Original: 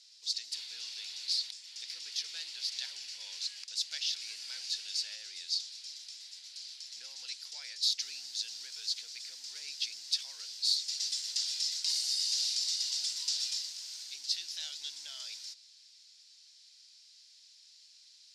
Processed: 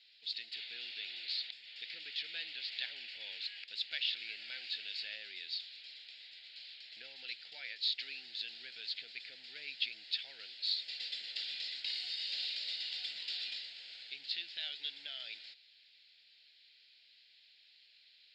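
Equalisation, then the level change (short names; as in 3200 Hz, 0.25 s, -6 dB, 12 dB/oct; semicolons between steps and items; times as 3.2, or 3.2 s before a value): Bessel low-pass 4000 Hz, order 2; air absorption 160 m; fixed phaser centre 2600 Hz, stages 4; +9.5 dB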